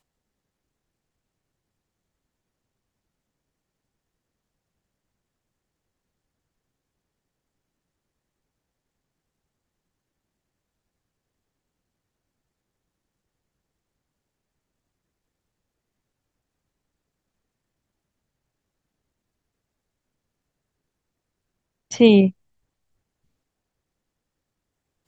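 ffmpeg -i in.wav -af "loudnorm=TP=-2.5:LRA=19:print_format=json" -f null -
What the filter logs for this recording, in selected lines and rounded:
"input_i" : "-17.8",
"input_tp" : "-2.2",
"input_lra" : "6.6",
"input_thresh" : "-28.9",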